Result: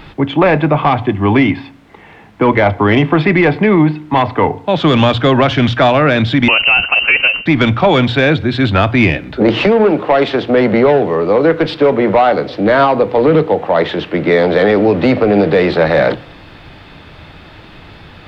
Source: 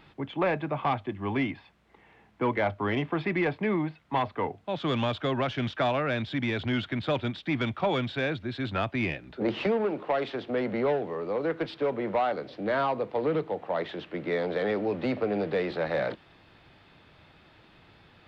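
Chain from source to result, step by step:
low-shelf EQ 70 Hz +10.5 dB
mains-hum notches 60/120 Hz
on a send at −17.5 dB: convolution reverb RT60 0.65 s, pre-delay 3 ms
0:06.48–0:07.46: on the sum: voice inversion scrambler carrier 2,900 Hz
boost into a limiter +19.5 dB
level −1 dB

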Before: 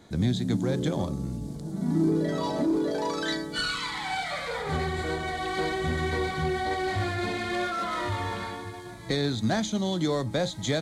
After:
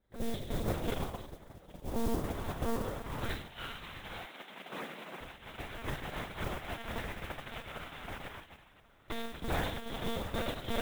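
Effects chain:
peak hold with a decay on every bin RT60 1.55 s
delay that swaps between a low-pass and a high-pass 416 ms, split 1,700 Hz, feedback 81%, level −8 dB
harmonic generator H 4 −32 dB, 7 −16 dB, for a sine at −7.5 dBFS
one-pitch LPC vocoder at 8 kHz 230 Hz
0:04.26–0:05.21: Butterworth high-pass 170 Hz 36 dB per octave
noise that follows the level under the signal 18 dB
level −6 dB

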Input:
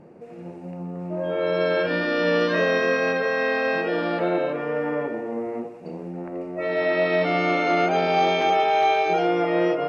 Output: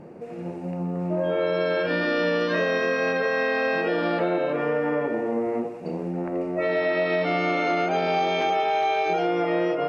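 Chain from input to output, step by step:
downward compressor, threshold −25 dBFS, peak gain reduction 8.5 dB
level +4.5 dB

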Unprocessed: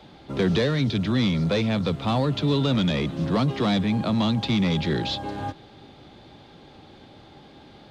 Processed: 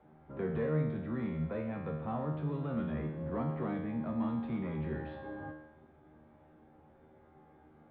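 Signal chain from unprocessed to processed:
low-pass filter 1,800 Hz 24 dB per octave
tuned comb filter 77 Hz, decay 0.89 s, harmonics all, mix 90%

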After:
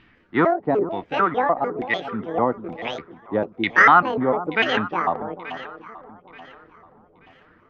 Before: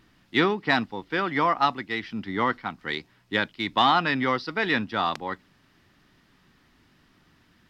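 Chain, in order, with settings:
pitch shifter gated in a rhythm +9 semitones, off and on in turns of 149 ms
auto-filter low-pass saw down 1.1 Hz 380–2,800 Hz
delay that swaps between a low-pass and a high-pass 440 ms, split 970 Hz, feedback 56%, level −11 dB
level +3 dB

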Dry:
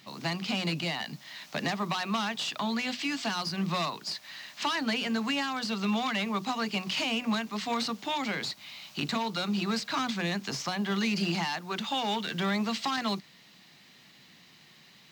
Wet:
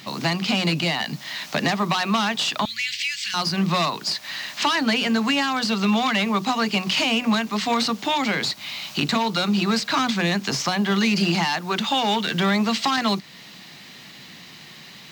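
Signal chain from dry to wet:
in parallel at +1.5 dB: downward compressor, threshold −40 dBFS, peak gain reduction 14 dB
0:02.65–0:03.34: on the sum: elliptic band-stop filter 110–2,000 Hz, stop band 50 dB
level +6.5 dB

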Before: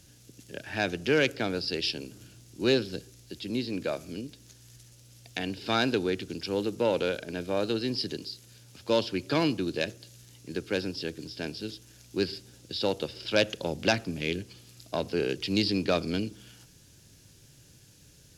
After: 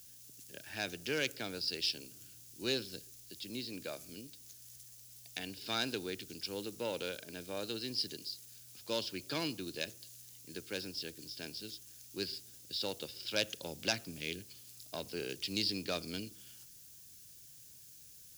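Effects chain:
first-order pre-emphasis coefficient 0.8
background noise violet −59 dBFS
level +1 dB

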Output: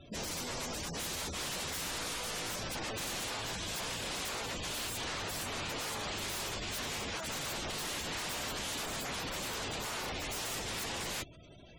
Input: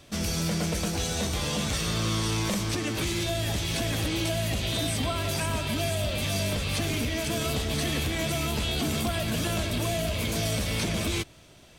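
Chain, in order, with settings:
wave folding −32.5 dBFS
gate on every frequency bin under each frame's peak −15 dB strong

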